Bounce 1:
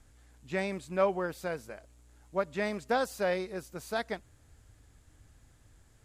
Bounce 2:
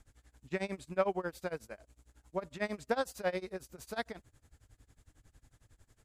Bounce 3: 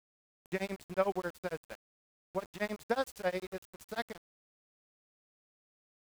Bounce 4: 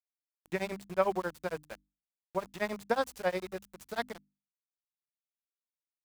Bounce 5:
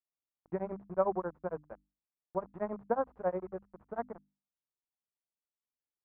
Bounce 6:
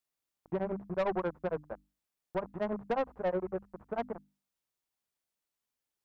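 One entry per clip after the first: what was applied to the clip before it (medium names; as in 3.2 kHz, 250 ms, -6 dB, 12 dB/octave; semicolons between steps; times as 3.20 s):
tremolo 11 Hz, depth 94%
small samples zeroed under -45 dBFS
hum notches 50/100/150/200/250/300 Hz; dynamic bell 1 kHz, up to +4 dB, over -47 dBFS, Q 2.4; trim +2 dB
low-pass 1.2 kHz 24 dB/octave; trim -1 dB
in parallel at +1 dB: peak limiter -26.5 dBFS, peak gain reduction 11 dB; on the sum: saturation -25.5 dBFS, distortion -11 dB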